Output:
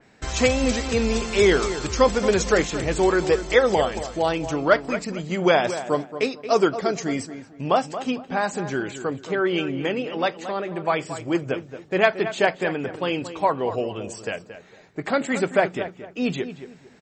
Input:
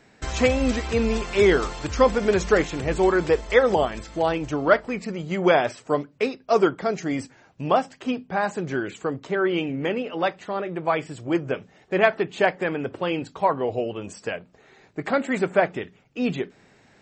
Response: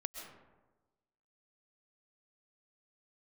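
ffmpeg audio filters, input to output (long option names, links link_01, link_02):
-filter_complex "[0:a]asplit=2[link_01][link_02];[link_02]adelay=226,lowpass=frequency=2200:poles=1,volume=-11dB,asplit=2[link_03][link_04];[link_04]adelay=226,lowpass=frequency=2200:poles=1,volume=0.29,asplit=2[link_05][link_06];[link_06]adelay=226,lowpass=frequency=2200:poles=1,volume=0.29[link_07];[link_01][link_03][link_05][link_07]amix=inputs=4:normalize=0,adynamicequalizer=threshold=0.00891:dfrequency=3400:dqfactor=0.7:tfrequency=3400:tqfactor=0.7:attack=5:release=100:ratio=0.375:range=4:mode=boostabove:tftype=highshelf"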